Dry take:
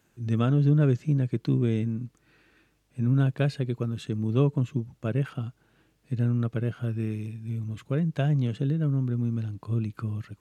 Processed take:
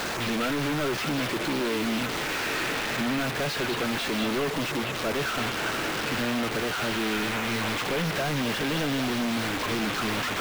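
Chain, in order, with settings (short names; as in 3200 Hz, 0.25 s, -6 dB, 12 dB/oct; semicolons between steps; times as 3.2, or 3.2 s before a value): delta modulation 32 kbps, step -39 dBFS; HPF 220 Hz 12 dB/oct; compressor, threshold -32 dBFS, peak gain reduction 11.5 dB; overdrive pedal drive 39 dB, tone 3200 Hz, clips at -21 dBFS; requantised 6-bit, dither none; on a send: delay with a stepping band-pass 0.201 s, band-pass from 2800 Hz, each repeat -0.7 oct, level -0.5 dB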